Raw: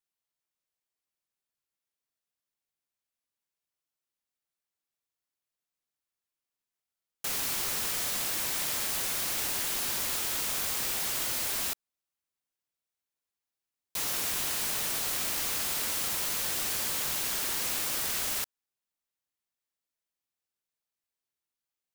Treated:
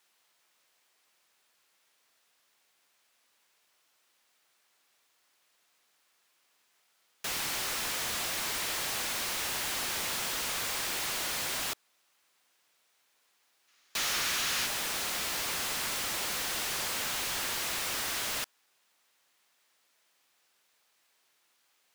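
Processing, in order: overdrive pedal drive 36 dB, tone 4.1 kHz, clips at -17.5 dBFS; time-frequency box 13.68–14.66 s, 1.1–7.1 kHz +6 dB; wavefolder -20.5 dBFS; trim -5.5 dB

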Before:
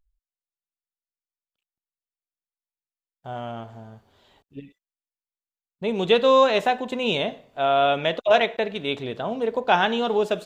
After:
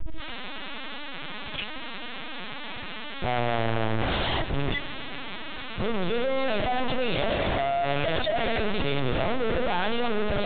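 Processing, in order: one-bit comparator; LPC vocoder at 8 kHz pitch kept; filtered feedback delay 139 ms, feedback 77%, level -17 dB

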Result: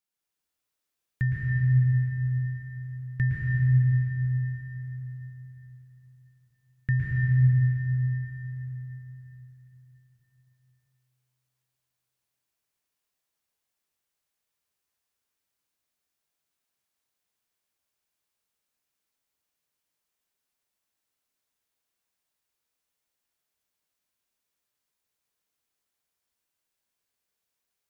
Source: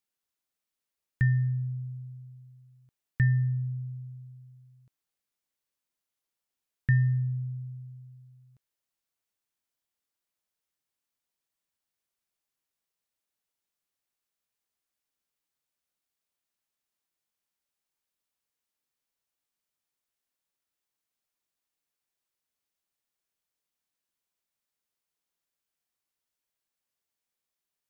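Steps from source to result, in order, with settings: plate-style reverb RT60 4.5 s, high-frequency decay 0.85×, pre-delay 100 ms, DRR -5.5 dB; trim -2 dB

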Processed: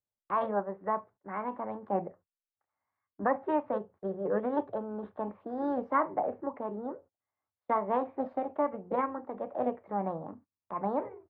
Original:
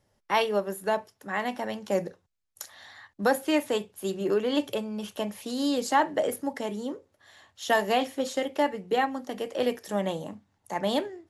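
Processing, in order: low-pass 1.2 kHz 24 dB/octave; gate -49 dBFS, range -26 dB; formant shift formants +3 st; trim -4 dB

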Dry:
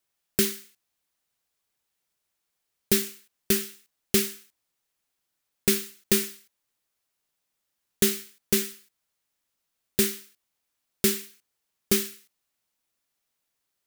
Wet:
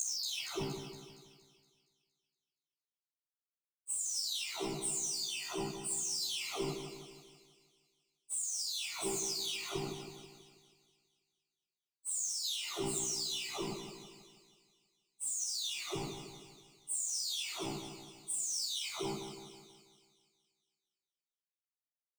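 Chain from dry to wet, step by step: delay that grows with frequency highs early, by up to 477 ms; steep low-pass 9 kHz 72 dB/octave; hum notches 60/120/180/240/300/360/420/480/540 Hz; spectral noise reduction 26 dB; waveshaping leveller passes 5; peak limiter -25.5 dBFS, peak gain reduction 11.5 dB; AM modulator 63 Hz, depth 85%; plain phase-vocoder stretch 1.6×; static phaser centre 340 Hz, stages 8; on a send: two-band feedback delay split 2.6 kHz, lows 162 ms, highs 233 ms, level -8 dB

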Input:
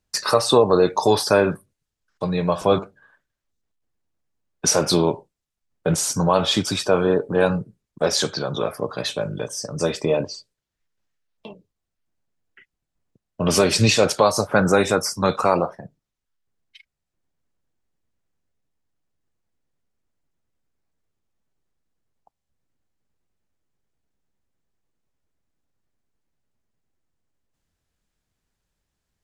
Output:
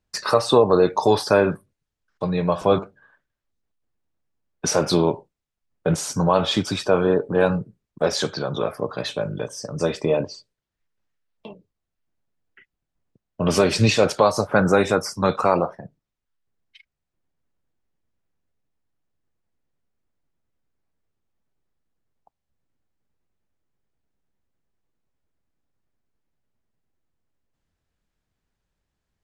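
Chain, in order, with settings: treble shelf 5.2 kHz -9.5 dB

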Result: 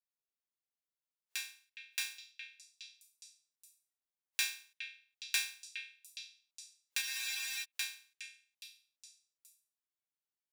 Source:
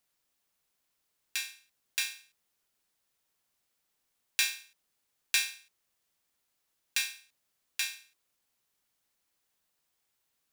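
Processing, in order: spectral noise reduction 16 dB; repeats whose band climbs or falls 414 ms, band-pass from 2.5 kHz, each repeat 0.7 oct, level -8 dB; spectral freeze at 7.03 s, 0.60 s; trim -5.5 dB

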